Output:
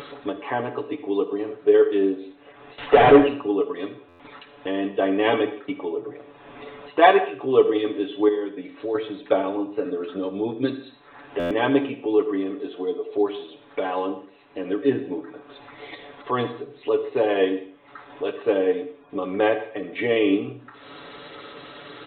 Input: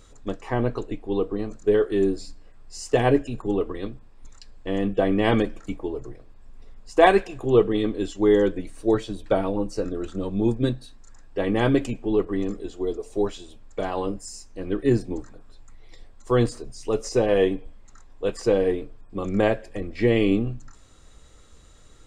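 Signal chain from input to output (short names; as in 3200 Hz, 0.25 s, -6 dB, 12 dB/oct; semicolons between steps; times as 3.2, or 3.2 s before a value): HPF 310 Hz 12 dB/oct; upward compressor, threshold -25 dBFS; 2.78–3.28 overdrive pedal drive 32 dB, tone 1000 Hz, clips at -6.5 dBFS; 8.28–8.95 compressor 4:1, threshold -28 dBFS, peak gain reduction 11 dB; comb 7 ms, depth 81%; reverb, pre-delay 53 ms, DRR 11 dB; downsampling 8000 Hz; stuck buffer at 4.08/11.39, samples 512, times 9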